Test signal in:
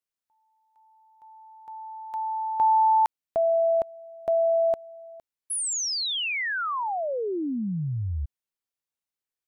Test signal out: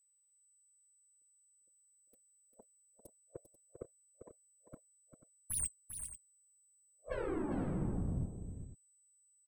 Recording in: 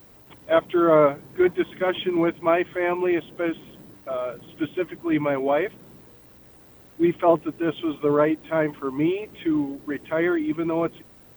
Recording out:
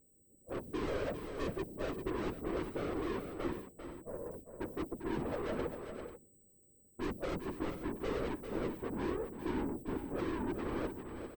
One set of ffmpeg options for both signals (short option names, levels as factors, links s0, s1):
-filter_complex "[0:a]agate=range=0.2:threshold=0.00794:ratio=16:release=183:detection=peak,afftfilt=real='re*(1-between(b*sr/4096,570,8100))':imag='im*(1-between(b*sr/4096,570,8100))':win_size=4096:overlap=0.75,equalizer=f=7800:t=o:w=0.45:g=4,acontrast=41,aeval=exprs='(tanh(28.2*val(0)+0.55)-tanh(0.55))/28.2':c=same,afftfilt=real='hypot(re,im)*cos(2*PI*random(0))':imag='hypot(re,im)*sin(2*PI*random(1))':win_size=512:overlap=0.75,aeval=exprs='val(0)+0.000316*sin(2*PI*8000*n/s)':c=same,asplit=2[s0][s1];[s1]aecho=0:1:397|489:0.376|0.2[s2];[s0][s2]amix=inputs=2:normalize=0,volume=0.891"